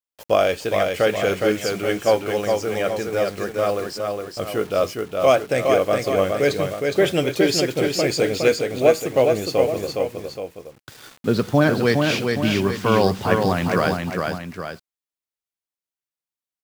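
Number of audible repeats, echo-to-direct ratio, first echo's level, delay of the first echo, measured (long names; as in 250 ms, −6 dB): 2, −3.0 dB, −4.0 dB, 413 ms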